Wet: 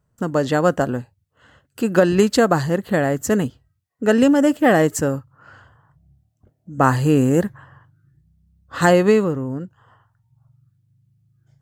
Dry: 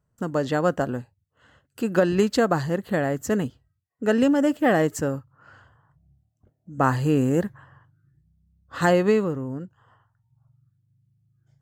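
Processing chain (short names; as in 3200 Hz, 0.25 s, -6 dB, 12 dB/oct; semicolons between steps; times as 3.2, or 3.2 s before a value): dynamic EQ 9800 Hz, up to +5 dB, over -49 dBFS, Q 1; gain +5 dB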